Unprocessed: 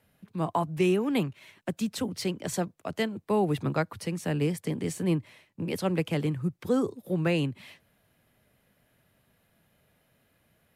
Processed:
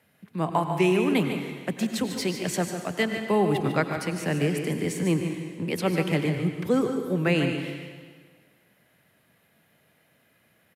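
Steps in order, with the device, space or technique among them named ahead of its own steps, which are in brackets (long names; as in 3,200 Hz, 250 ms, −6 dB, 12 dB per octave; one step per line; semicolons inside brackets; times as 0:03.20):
PA in a hall (high-pass filter 120 Hz; parametric band 2,000 Hz +4.5 dB 0.66 octaves; single-tap delay 148 ms −9 dB; convolution reverb RT60 1.6 s, pre-delay 86 ms, DRR 7 dB)
level +2.5 dB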